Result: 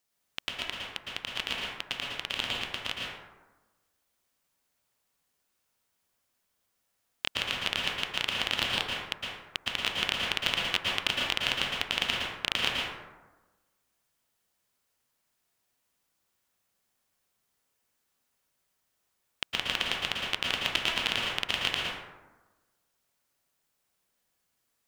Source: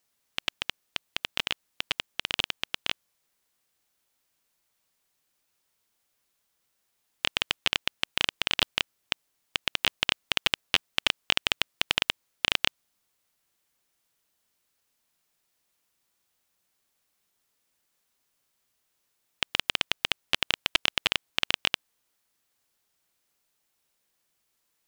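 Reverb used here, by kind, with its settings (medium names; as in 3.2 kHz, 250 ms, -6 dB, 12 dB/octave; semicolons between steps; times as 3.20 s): plate-style reverb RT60 1.2 s, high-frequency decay 0.4×, pre-delay 100 ms, DRR -3 dB; trim -5 dB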